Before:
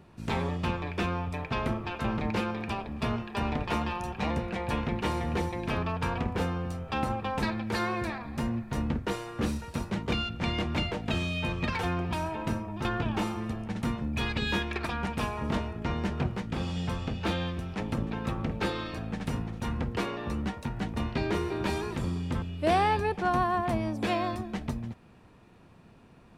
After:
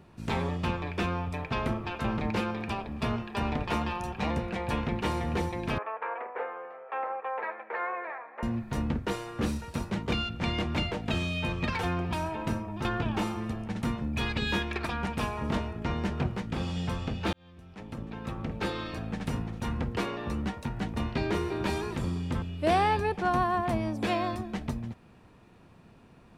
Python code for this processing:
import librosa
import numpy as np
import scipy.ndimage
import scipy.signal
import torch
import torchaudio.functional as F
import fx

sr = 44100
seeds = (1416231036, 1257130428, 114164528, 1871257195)

y = fx.ellip_bandpass(x, sr, low_hz=470.0, high_hz=2100.0, order=3, stop_db=70, at=(5.78, 8.43))
y = fx.edit(y, sr, fx.fade_in_span(start_s=17.33, length_s=1.61), tone=tone)